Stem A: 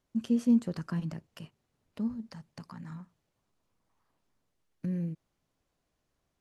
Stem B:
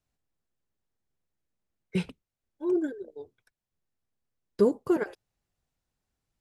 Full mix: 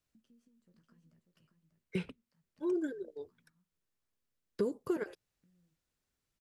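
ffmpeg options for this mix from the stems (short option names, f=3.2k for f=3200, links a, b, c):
-filter_complex "[0:a]alimiter=level_in=2dB:limit=-24dB:level=0:latency=1:release=100,volume=-2dB,acompressor=threshold=-42dB:ratio=12,flanger=delay=7.8:depth=9.8:regen=-39:speed=0.71:shape=triangular,volume=-18dB,asplit=2[a][b];[b]volume=-6.5dB[c];[1:a]lowshelf=f=270:g=-6.5,volume=0.5dB,asplit=2[d][e];[e]apad=whole_len=282304[f];[a][f]sidechaincompress=threshold=-39dB:ratio=5:attack=6.5:release=772[g];[c]aecho=0:1:592:1[h];[g][d][h]amix=inputs=3:normalize=0,equalizer=f=790:w=2.2:g=-6.5,acrossover=split=500|2800[i][j][k];[i]acompressor=threshold=-32dB:ratio=4[l];[j]acompressor=threshold=-43dB:ratio=4[m];[k]acompressor=threshold=-59dB:ratio=4[n];[l][m][n]amix=inputs=3:normalize=0"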